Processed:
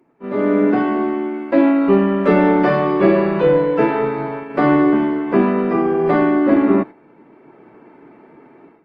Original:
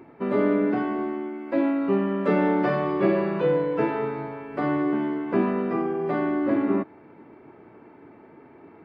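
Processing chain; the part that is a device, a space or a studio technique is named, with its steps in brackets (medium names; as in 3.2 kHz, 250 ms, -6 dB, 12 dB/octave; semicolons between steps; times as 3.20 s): video call (high-pass 130 Hz 24 dB/octave; level rider gain up to 14.5 dB; gate -25 dBFS, range -9 dB; trim -1 dB; Opus 24 kbps 48 kHz)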